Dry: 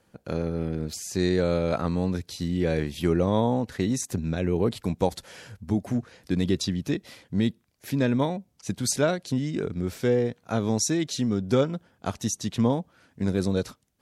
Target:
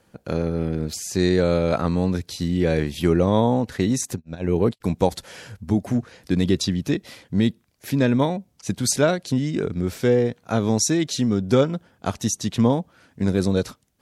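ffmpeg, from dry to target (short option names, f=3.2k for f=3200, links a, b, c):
-filter_complex "[0:a]asplit=3[a][b][c];[a]afade=t=out:st=4.14:d=0.02[d];[b]agate=range=-46dB:threshold=-24dB:ratio=16:detection=peak,afade=t=in:st=4.14:d=0.02,afade=t=out:st=4.8:d=0.02[e];[c]afade=t=in:st=4.8:d=0.02[f];[d][e][f]amix=inputs=3:normalize=0,volume=4.5dB"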